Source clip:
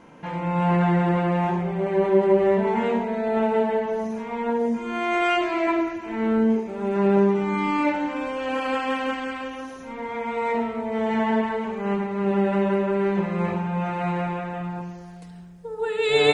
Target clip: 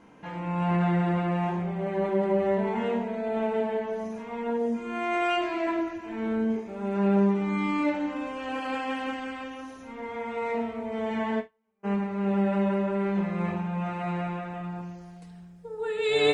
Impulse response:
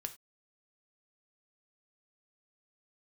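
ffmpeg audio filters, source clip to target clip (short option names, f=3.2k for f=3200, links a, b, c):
-filter_complex "[0:a]asplit=3[a][b][c];[a]afade=t=out:st=11.39:d=0.02[d];[b]agate=range=-42dB:threshold=-19dB:ratio=16:detection=peak,afade=t=in:st=11.39:d=0.02,afade=t=out:st=11.83:d=0.02[e];[c]afade=t=in:st=11.83:d=0.02[f];[d][e][f]amix=inputs=3:normalize=0[g];[1:a]atrim=start_sample=2205,asetrate=61740,aresample=44100[h];[g][h]afir=irnorm=-1:irlink=0"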